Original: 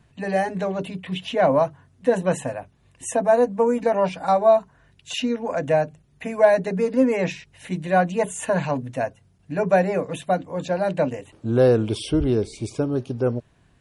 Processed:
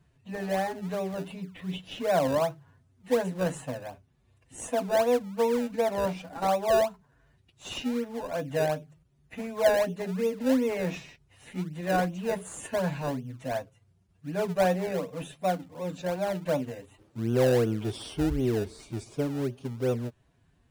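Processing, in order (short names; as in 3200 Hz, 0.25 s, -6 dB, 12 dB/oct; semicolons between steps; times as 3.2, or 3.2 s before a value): time stretch by phase-locked vocoder 1.5×; in parallel at -7.5 dB: decimation with a swept rate 28×, swing 100% 2.7 Hz; on the sum: gain -9 dB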